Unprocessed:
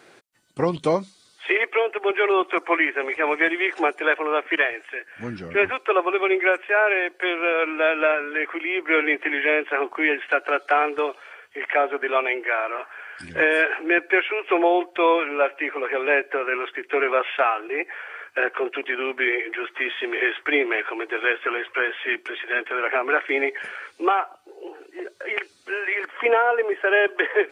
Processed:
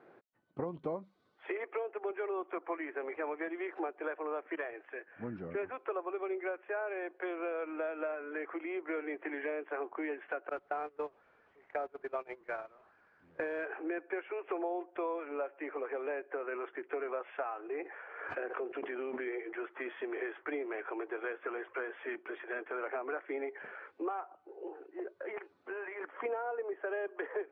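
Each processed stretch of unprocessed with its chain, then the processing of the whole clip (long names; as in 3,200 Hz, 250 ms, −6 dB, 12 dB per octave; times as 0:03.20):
0:10.49–0:13.65: linear delta modulator 64 kbit/s, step −24.5 dBFS + noise gate −23 dBFS, range −24 dB
0:17.83–0:19.28: dynamic equaliser 1,200 Hz, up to −4 dB, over −33 dBFS, Q 0.97 + background raised ahead of every attack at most 54 dB per second
0:25.29–0:26.01: parametric band 940 Hz +6 dB 0.66 octaves + downward compressor 5 to 1, threshold −26 dBFS
whole clip: low-pass filter 1,100 Hz 12 dB per octave; low-shelf EQ 92 Hz −9 dB; downward compressor 4 to 1, threshold −30 dBFS; level −5.5 dB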